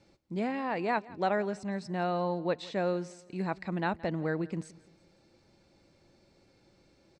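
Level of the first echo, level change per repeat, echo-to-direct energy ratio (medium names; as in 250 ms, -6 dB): -21.0 dB, -8.0 dB, -20.0 dB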